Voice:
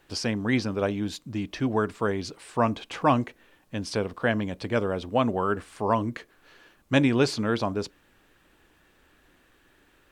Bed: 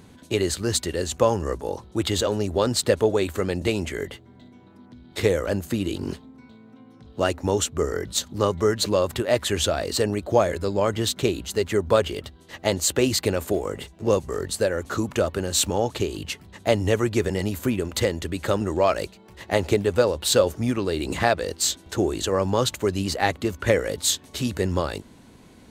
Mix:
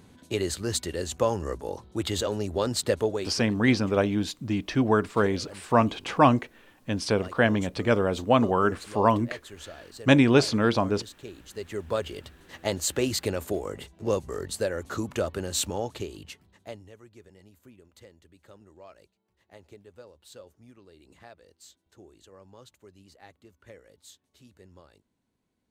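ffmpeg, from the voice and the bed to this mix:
-filter_complex "[0:a]adelay=3150,volume=3dB[a];[1:a]volume=10dB,afade=t=out:st=3.01:d=0.42:silence=0.16788,afade=t=in:st=11.24:d=1.28:silence=0.177828,afade=t=out:st=15.47:d=1.42:silence=0.0668344[b];[a][b]amix=inputs=2:normalize=0"

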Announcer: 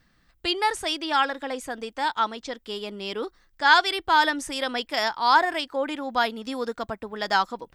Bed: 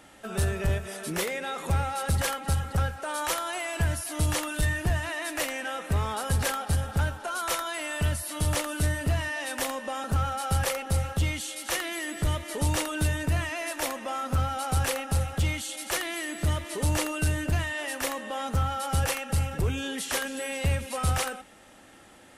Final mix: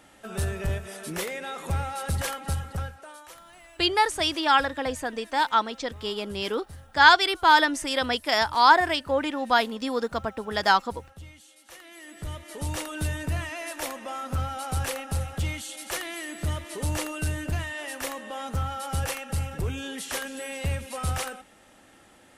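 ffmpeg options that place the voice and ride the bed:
-filter_complex "[0:a]adelay=3350,volume=2dB[a];[1:a]volume=14dB,afade=t=out:st=2.49:d=0.75:silence=0.149624,afade=t=in:st=11.74:d=1.38:silence=0.158489[b];[a][b]amix=inputs=2:normalize=0"

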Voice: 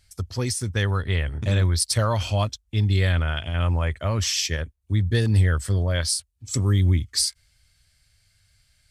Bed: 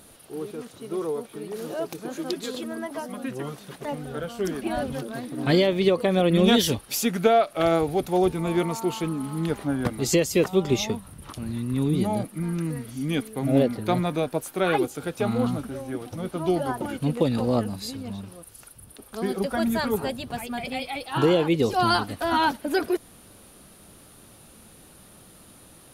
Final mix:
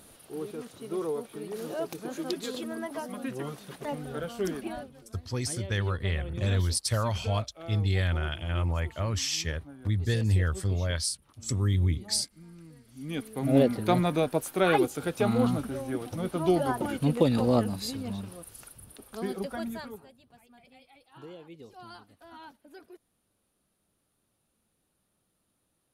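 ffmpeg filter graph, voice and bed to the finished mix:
-filter_complex "[0:a]adelay=4950,volume=-6dB[a];[1:a]volume=18dB,afade=t=out:st=4.48:d=0.43:silence=0.11885,afade=t=in:st=12.85:d=0.82:silence=0.0891251,afade=t=out:st=18.53:d=1.53:silence=0.0530884[b];[a][b]amix=inputs=2:normalize=0"

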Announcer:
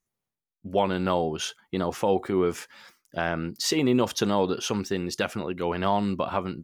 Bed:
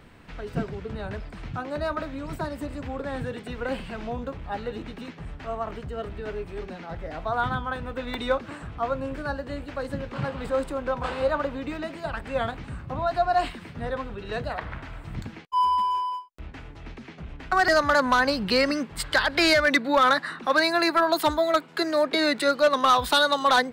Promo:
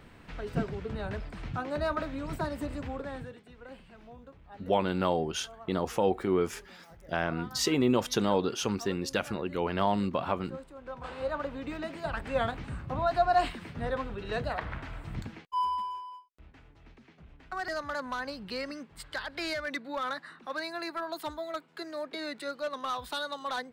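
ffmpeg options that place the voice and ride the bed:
-filter_complex "[0:a]adelay=3950,volume=-3dB[a];[1:a]volume=14dB,afade=t=out:st=2.76:d=0.65:silence=0.158489,afade=t=in:st=10.74:d=1.47:silence=0.158489,afade=t=out:st=15.01:d=1.01:silence=0.237137[b];[a][b]amix=inputs=2:normalize=0"

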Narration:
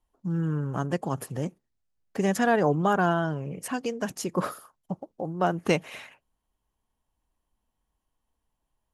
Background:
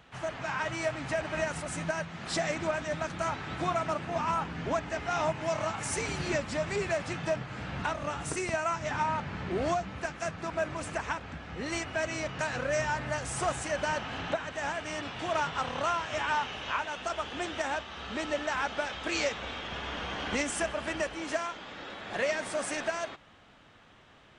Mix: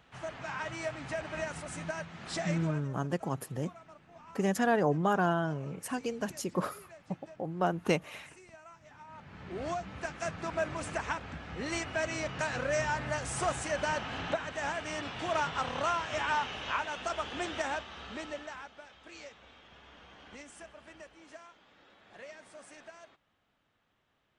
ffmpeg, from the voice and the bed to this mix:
-filter_complex "[0:a]adelay=2200,volume=-4.5dB[a];[1:a]volume=16.5dB,afade=t=out:st=2.51:d=0.38:silence=0.133352,afade=t=in:st=9.07:d=1.26:silence=0.0841395,afade=t=out:st=17.57:d=1.14:silence=0.133352[b];[a][b]amix=inputs=2:normalize=0"

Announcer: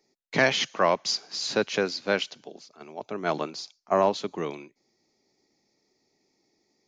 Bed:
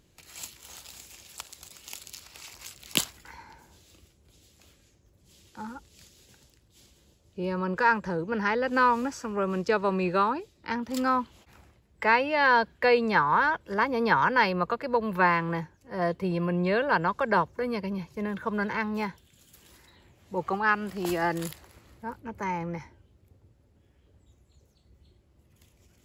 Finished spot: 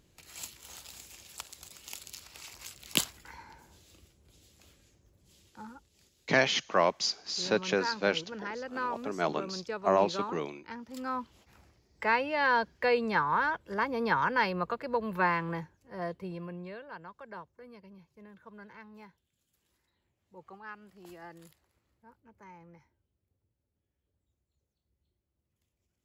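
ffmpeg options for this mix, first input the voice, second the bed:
-filter_complex "[0:a]adelay=5950,volume=-3dB[a];[1:a]volume=5dB,afade=t=out:st=5:d=0.96:silence=0.316228,afade=t=in:st=11:d=0.44:silence=0.446684,afade=t=out:st=15.49:d=1.33:silence=0.158489[b];[a][b]amix=inputs=2:normalize=0"

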